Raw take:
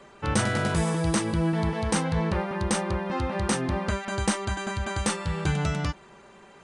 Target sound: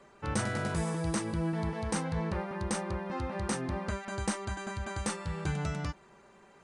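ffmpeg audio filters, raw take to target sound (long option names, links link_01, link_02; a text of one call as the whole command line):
ffmpeg -i in.wav -af "equalizer=frequency=3200:width=2.2:gain=-4,volume=-7dB" out.wav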